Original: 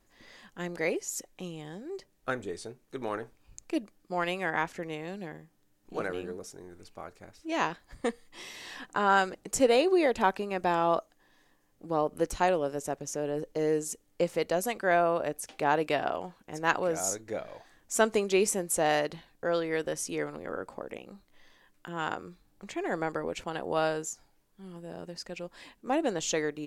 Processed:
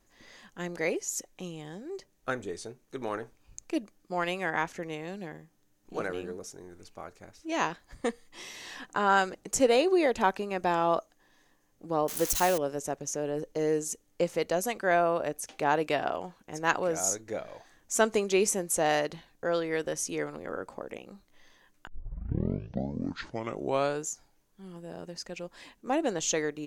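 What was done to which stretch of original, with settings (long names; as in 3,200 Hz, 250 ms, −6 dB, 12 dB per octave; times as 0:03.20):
0:12.08–0:12.58: spike at every zero crossing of −22.5 dBFS
0:21.87: tape start 2.21 s
whole clip: parametric band 6,300 Hz +5.5 dB 0.24 octaves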